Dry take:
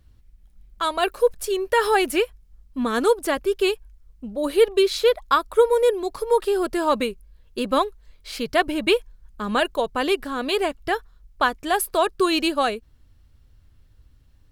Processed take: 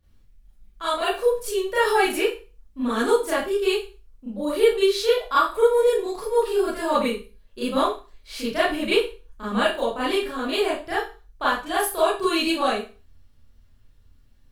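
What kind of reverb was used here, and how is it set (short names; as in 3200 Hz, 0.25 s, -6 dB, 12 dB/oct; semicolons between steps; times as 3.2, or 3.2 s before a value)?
Schroeder reverb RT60 0.33 s, combs from 27 ms, DRR -10 dB; gain -11 dB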